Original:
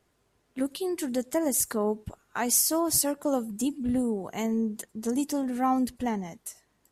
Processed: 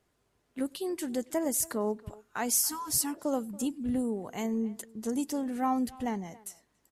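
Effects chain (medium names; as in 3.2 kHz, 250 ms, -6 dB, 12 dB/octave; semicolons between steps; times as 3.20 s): speakerphone echo 280 ms, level -20 dB; spectral replace 2.71–3.18 s, 320–740 Hz both; trim -3.5 dB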